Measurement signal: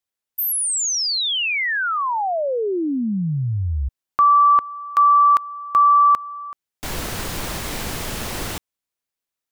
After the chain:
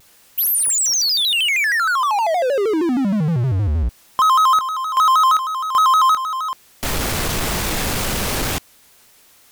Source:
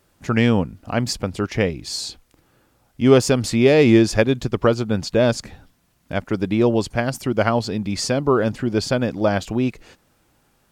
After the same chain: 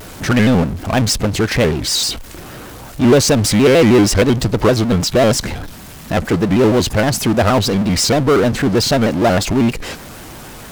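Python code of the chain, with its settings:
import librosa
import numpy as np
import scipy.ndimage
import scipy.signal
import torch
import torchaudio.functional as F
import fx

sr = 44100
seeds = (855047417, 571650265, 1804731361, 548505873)

y = fx.power_curve(x, sr, exponent=0.5)
y = fx.vibrato_shape(y, sr, shape='square', rate_hz=6.4, depth_cents=160.0)
y = y * 10.0 ** (-1.5 / 20.0)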